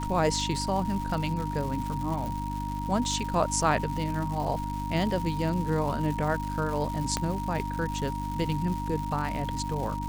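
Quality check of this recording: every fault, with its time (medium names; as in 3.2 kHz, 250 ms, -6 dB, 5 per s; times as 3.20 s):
crackle 340 per s -34 dBFS
hum 50 Hz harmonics 6 -34 dBFS
whine 940 Hz -34 dBFS
2.26 s: pop
7.17 s: pop -12 dBFS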